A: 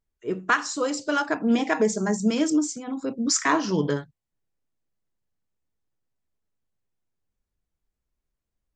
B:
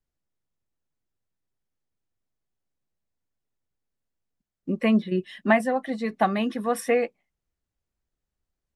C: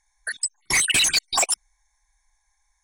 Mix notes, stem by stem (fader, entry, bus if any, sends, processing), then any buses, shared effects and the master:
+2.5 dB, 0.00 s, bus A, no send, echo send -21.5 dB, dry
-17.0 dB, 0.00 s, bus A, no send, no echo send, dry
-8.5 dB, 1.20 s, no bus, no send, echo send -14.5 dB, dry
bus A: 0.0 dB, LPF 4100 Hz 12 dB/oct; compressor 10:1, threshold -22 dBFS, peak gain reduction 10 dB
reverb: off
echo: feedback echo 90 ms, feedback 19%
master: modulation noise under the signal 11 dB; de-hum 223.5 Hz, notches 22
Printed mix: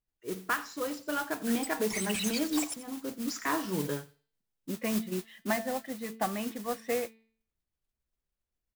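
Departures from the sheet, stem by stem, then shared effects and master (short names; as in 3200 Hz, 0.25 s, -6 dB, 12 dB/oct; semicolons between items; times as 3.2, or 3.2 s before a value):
stem A +2.5 dB -> -8.5 dB; stem B -17.0 dB -> -9.0 dB; stem C -8.5 dB -> -16.5 dB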